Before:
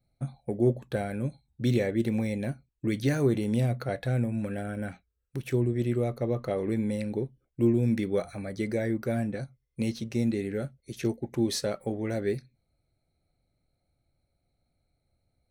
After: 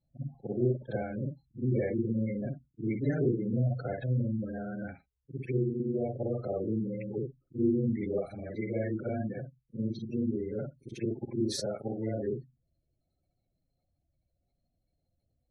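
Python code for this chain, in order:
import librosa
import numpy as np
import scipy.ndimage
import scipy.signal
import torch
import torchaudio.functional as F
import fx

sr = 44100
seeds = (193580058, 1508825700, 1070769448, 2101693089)

y = fx.frame_reverse(x, sr, frame_ms=127.0)
y = fx.spec_gate(y, sr, threshold_db=-20, keep='strong')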